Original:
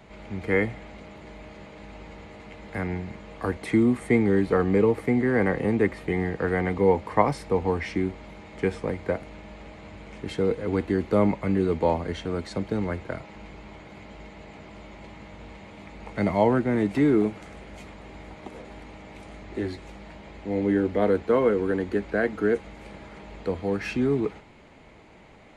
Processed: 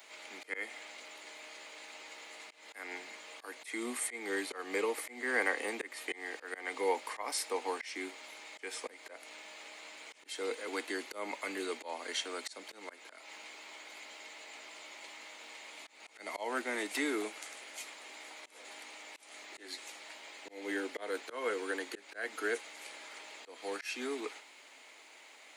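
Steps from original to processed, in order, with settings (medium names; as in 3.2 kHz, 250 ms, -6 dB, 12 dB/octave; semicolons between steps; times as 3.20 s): Chebyshev high-pass 260 Hz, order 4; differentiator; slow attack 221 ms; trim +12 dB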